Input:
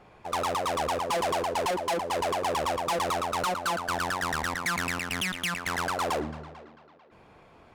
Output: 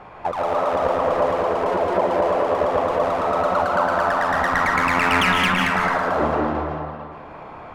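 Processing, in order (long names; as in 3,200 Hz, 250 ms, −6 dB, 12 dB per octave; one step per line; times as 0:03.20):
drawn EQ curve 390 Hz 0 dB, 1,000 Hz +8 dB, 8,900 Hz −10 dB
compressor whose output falls as the input rises −29 dBFS, ratio −1
comb and all-pass reverb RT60 1.6 s, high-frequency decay 0.25×, pre-delay 110 ms, DRR −1.5 dB
level +4.5 dB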